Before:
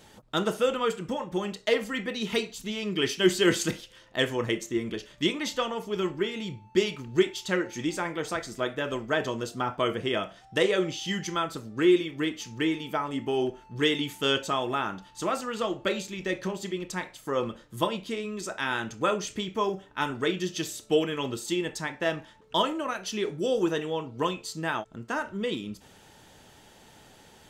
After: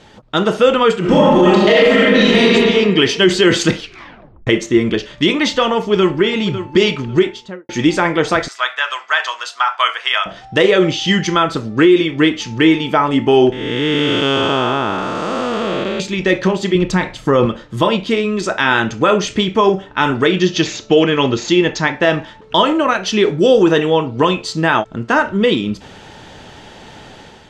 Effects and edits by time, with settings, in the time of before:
0:00.99–0:02.45: thrown reverb, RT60 1.7 s, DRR −8.5 dB
0:03.77: tape stop 0.70 s
0:05.77–0:06.37: delay throw 550 ms, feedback 25%, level −12.5 dB
0:07.04–0:07.69: fade out and dull
0:08.48–0:10.26: high-pass filter 970 Hz 24 dB per octave
0:13.52–0:16.00: spectrum smeared in time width 498 ms
0:16.75–0:17.46: low-shelf EQ 210 Hz +10.5 dB
0:20.39–0:21.95: bad sample-rate conversion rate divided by 3×, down none, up filtered
whole clip: low-pass filter 4,700 Hz 12 dB per octave; automatic gain control gain up to 7 dB; boost into a limiter +11 dB; level −1 dB

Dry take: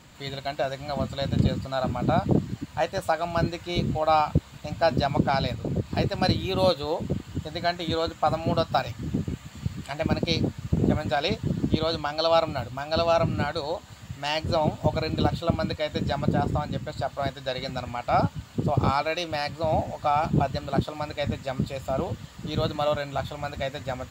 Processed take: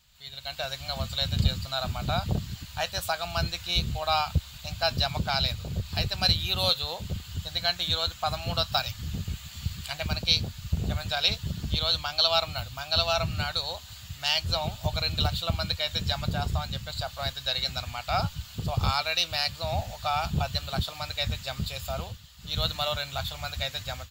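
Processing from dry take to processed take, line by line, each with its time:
0:21.95–0:22.63: duck −9.5 dB, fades 0.26 s
whole clip: guitar amp tone stack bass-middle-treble 10-0-10; automatic gain control gain up to 14.5 dB; octave-band graphic EQ 125/500/1,000/2,000/8,000 Hz −5/−6/−7/−9/−9 dB

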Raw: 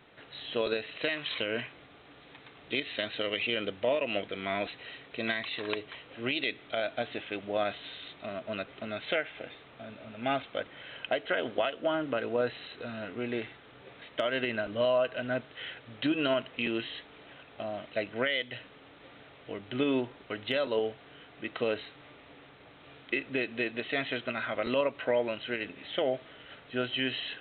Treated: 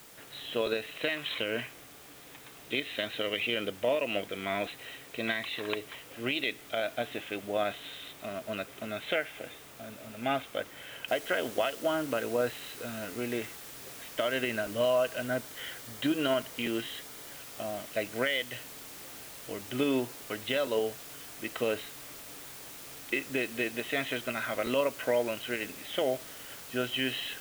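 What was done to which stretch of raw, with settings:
0:11.08: noise floor change −54 dB −47 dB
0:15.26–0:17.35: notch filter 2,600 Hz

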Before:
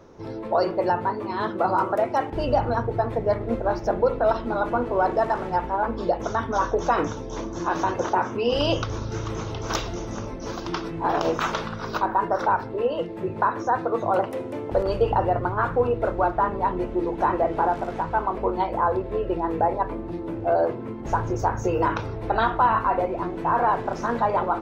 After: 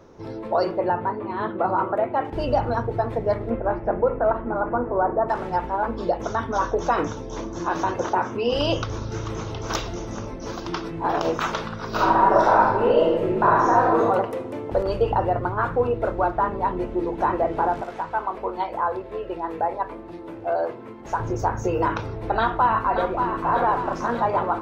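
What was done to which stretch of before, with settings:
0:00.78–0:02.25: moving average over 8 samples
0:03.49–0:05.28: low-pass filter 2,800 Hz → 1,400 Hz 24 dB per octave
0:11.88–0:14.01: thrown reverb, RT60 1.1 s, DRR −6 dB
0:17.82–0:21.20: low-shelf EQ 350 Hz −11.5 dB
0:22.35–0:23.39: delay throw 580 ms, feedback 60%, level −6.5 dB

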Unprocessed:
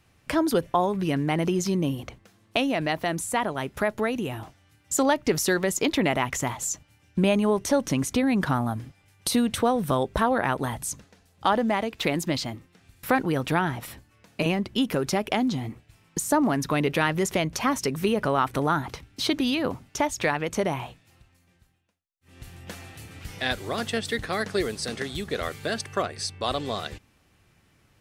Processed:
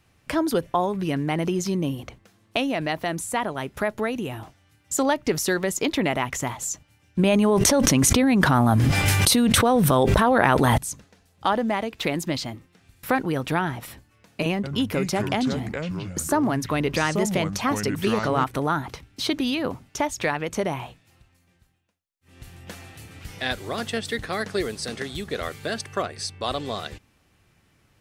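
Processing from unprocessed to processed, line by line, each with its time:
0:07.19–0:10.78: envelope flattener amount 100%
0:14.54–0:18.44: delay with pitch and tempo change per echo 95 ms, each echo −6 semitones, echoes 2, each echo −6 dB

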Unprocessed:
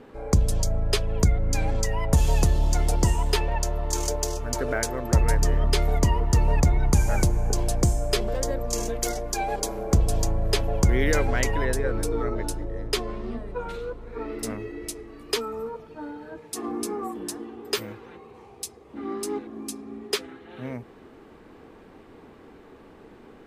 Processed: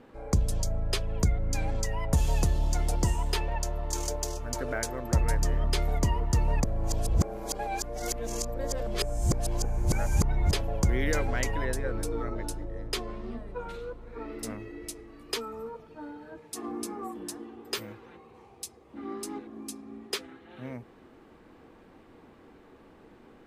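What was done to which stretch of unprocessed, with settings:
0:06.64–0:10.51: reverse
whole clip: notch filter 420 Hz, Q 12; level −5 dB

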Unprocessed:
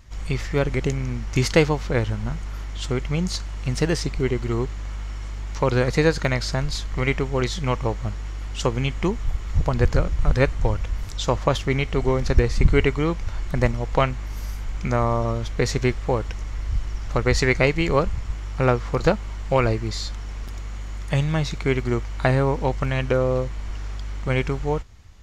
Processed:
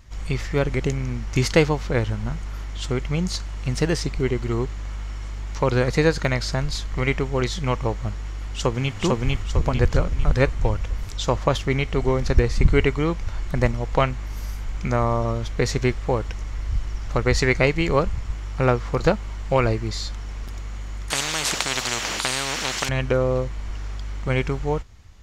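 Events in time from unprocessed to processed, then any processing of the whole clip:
0:08.29–0:08.97: delay throw 450 ms, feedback 45%, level −0.5 dB
0:21.10–0:22.89: every bin compressed towards the loudest bin 10 to 1

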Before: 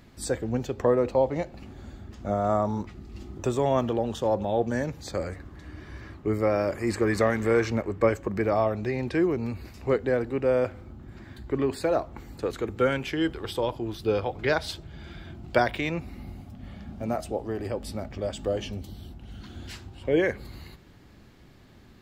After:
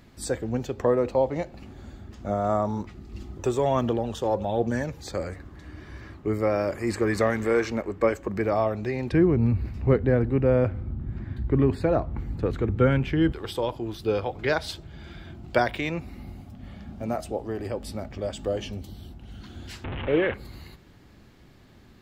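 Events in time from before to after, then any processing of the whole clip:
0:03.12–0:05.14: phase shifter 1.3 Hz, delay 2.7 ms, feedback 31%
0:07.44–0:08.28: parametric band 120 Hz −8.5 dB 0.65 octaves
0:09.12–0:13.32: bass and treble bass +13 dB, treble −12 dB
0:19.84–0:20.34: linear delta modulator 16 kbit/s, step −26 dBFS

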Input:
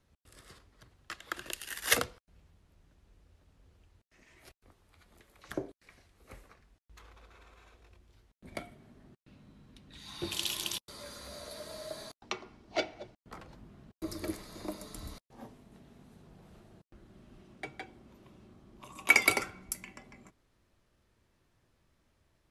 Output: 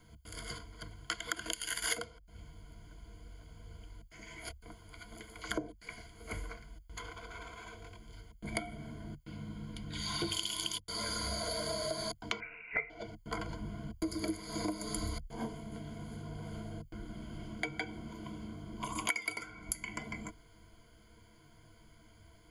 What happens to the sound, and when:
0:12.40–0:12.90: voice inversion scrambler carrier 2,700 Hz
whole clip: EQ curve with evenly spaced ripples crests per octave 1.8, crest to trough 17 dB; downward compressor 12 to 1, threshold −41 dBFS; notch filter 520 Hz, Q 15; level +8.5 dB

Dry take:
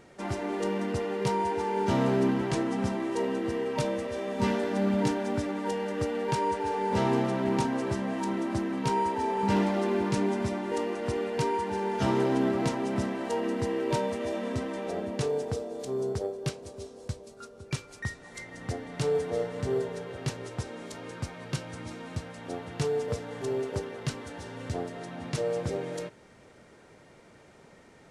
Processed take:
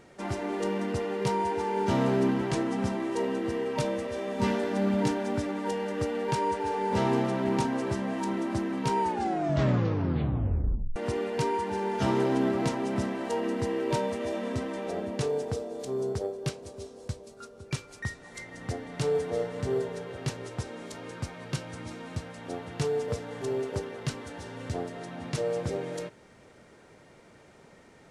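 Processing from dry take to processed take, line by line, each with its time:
0:09.00: tape stop 1.96 s

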